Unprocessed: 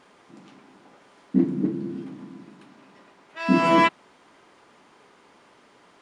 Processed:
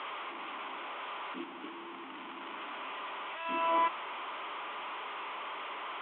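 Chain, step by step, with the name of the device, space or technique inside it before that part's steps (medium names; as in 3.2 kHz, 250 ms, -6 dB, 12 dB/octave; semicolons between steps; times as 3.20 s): digital answering machine (band-pass 340–3300 Hz; one-bit delta coder 16 kbps, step -25.5 dBFS; cabinet simulation 490–3600 Hz, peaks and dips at 490 Hz -7 dB, 730 Hz -4 dB, 1.1 kHz +5 dB, 1.7 kHz -7 dB, 3.3 kHz +6 dB); trim -8 dB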